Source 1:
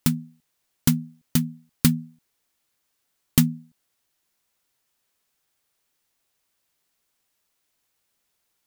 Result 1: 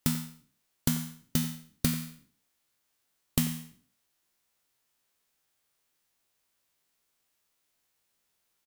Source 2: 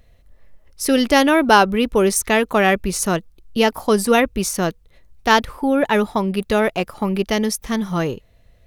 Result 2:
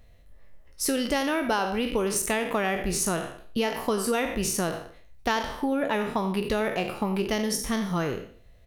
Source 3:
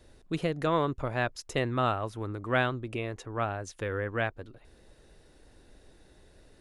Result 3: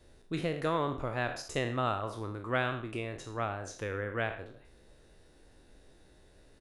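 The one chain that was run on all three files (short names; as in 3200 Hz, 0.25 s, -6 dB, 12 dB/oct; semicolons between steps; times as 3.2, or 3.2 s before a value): spectral trails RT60 0.46 s; compressor 6:1, threshold -19 dBFS; speakerphone echo 90 ms, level -13 dB; gain -4 dB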